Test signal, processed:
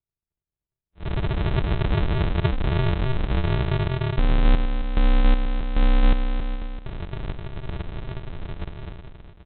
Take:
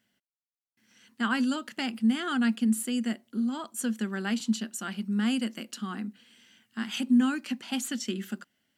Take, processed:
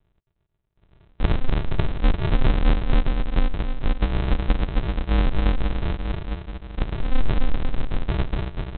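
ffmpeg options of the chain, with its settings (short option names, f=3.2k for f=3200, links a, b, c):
-af "aecho=1:1:270|486|658.8|797|907.6:0.631|0.398|0.251|0.158|0.1,aresample=8000,acrusher=samples=31:mix=1:aa=0.000001,aresample=44100,alimiter=level_in=17dB:limit=-1dB:release=50:level=0:latency=1,volume=-8dB"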